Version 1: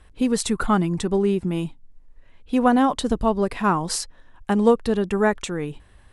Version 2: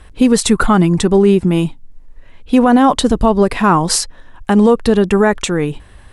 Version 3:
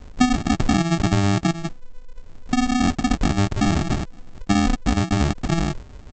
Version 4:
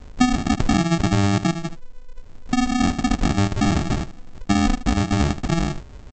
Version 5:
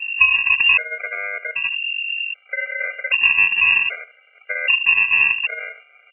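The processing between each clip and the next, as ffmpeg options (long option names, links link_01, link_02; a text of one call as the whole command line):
ffmpeg -i in.wav -af "alimiter=level_in=12dB:limit=-1dB:release=50:level=0:latency=1,volume=-1dB" out.wav
ffmpeg -i in.wav -af "highshelf=frequency=5000:gain=7.5,acompressor=threshold=-16dB:ratio=6,aresample=16000,acrusher=samples=32:mix=1:aa=0.000001,aresample=44100" out.wav
ffmpeg -i in.wav -af "aecho=1:1:76:0.2" out.wav
ffmpeg -i in.wav -af "aeval=exprs='val(0)+0.0355*(sin(2*PI*50*n/s)+sin(2*PI*2*50*n/s)/2+sin(2*PI*3*50*n/s)/3+sin(2*PI*4*50*n/s)/4+sin(2*PI*5*50*n/s)/5)':channel_layout=same,lowpass=frequency=2400:width_type=q:width=0.5098,lowpass=frequency=2400:width_type=q:width=0.6013,lowpass=frequency=2400:width_type=q:width=0.9,lowpass=frequency=2400:width_type=q:width=2.563,afreqshift=-2800,afftfilt=real='re*gt(sin(2*PI*0.64*pts/sr)*(1-2*mod(floor(b*sr/1024/400),2)),0)':imag='im*gt(sin(2*PI*0.64*pts/sr)*(1-2*mod(floor(b*sr/1024/400),2)),0)':win_size=1024:overlap=0.75,volume=3.5dB" out.wav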